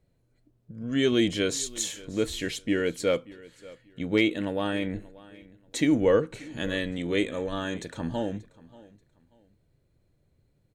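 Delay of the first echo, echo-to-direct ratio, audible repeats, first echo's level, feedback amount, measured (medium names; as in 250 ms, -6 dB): 584 ms, -20.5 dB, 2, -21.0 dB, 26%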